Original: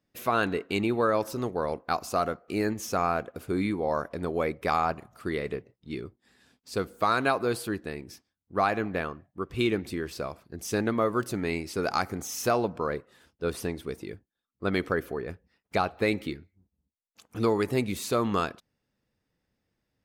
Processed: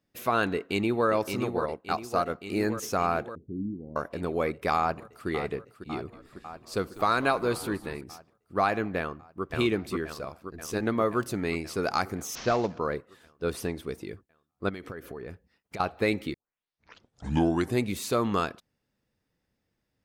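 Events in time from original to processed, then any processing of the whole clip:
0.54–1.08 s: echo throw 570 ms, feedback 70%, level -6 dB
1.59–2.30 s: upward expansion, over -41 dBFS
3.35–3.96 s: four-pole ladder low-pass 320 Hz, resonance 30%
4.79–5.28 s: echo throw 550 ms, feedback 75%, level -10 dB
5.93–8.01 s: frequency-shifting echo 197 ms, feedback 58%, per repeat -87 Hz, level -17 dB
8.99–9.45 s: echo throw 530 ms, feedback 65%, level -2 dB
10.05–10.83 s: AM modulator 89 Hz, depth 45%
12.35–12.79 s: CVSD coder 32 kbps
14.69–15.80 s: compression 16:1, threshold -34 dBFS
16.34 s: tape start 1.49 s

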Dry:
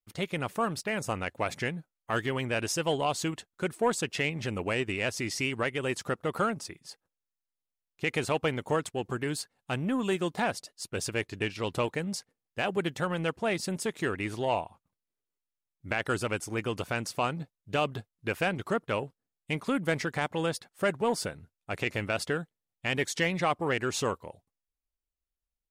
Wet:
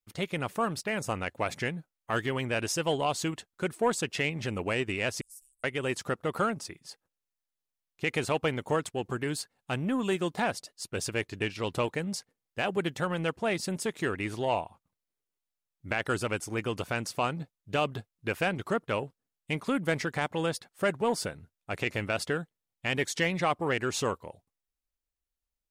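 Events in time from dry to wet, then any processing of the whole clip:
5.21–5.64 s: inverse Chebyshev band-stop 140–2100 Hz, stop band 80 dB

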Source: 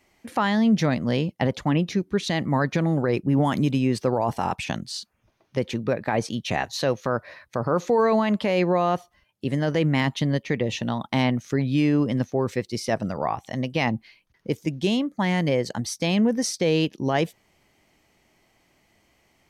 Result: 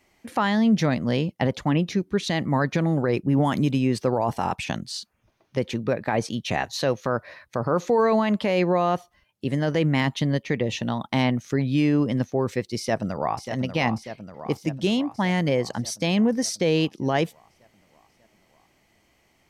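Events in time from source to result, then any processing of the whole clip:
12.78–13.51 s: echo throw 590 ms, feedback 65%, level -8.5 dB

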